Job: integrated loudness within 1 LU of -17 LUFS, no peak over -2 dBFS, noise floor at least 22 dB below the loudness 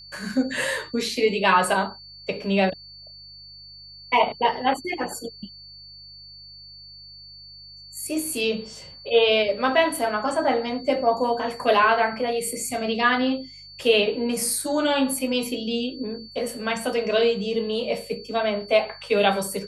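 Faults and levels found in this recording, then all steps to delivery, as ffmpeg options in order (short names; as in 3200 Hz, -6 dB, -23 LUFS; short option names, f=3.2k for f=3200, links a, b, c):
hum 50 Hz; harmonics up to 150 Hz; hum level -53 dBFS; steady tone 4500 Hz; tone level -42 dBFS; loudness -23.5 LUFS; peak -5.0 dBFS; loudness target -17.0 LUFS
-> -af "bandreject=f=50:t=h:w=4,bandreject=f=100:t=h:w=4,bandreject=f=150:t=h:w=4"
-af "bandreject=f=4.5k:w=30"
-af "volume=6.5dB,alimiter=limit=-2dB:level=0:latency=1"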